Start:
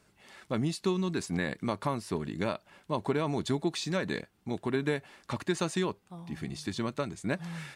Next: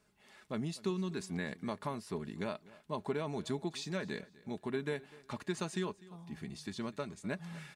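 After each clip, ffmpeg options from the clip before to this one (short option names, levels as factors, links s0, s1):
-af "aecho=1:1:4.8:0.33,aecho=1:1:249|498:0.0891|0.025,volume=0.422"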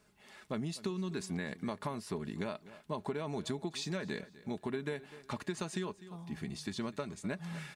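-af "acompressor=threshold=0.0141:ratio=6,volume=1.58"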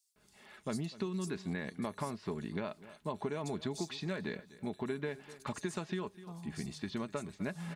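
-filter_complex "[0:a]acrossover=split=4700[s0][s1];[s0]adelay=160[s2];[s2][s1]amix=inputs=2:normalize=0"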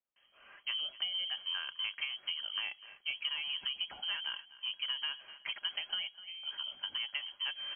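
-af "aeval=exprs='0.0794*(cos(1*acos(clip(val(0)/0.0794,-1,1)))-cos(1*PI/2))+0.00158*(cos(8*acos(clip(val(0)/0.0794,-1,1)))-cos(8*PI/2))':c=same,lowpass=f=2800:t=q:w=0.5098,lowpass=f=2800:t=q:w=0.6013,lowpass=f=2800:t=q:w=0.9,lowpass=f=2800:t=q:w=2.563,afreqshift=-3300"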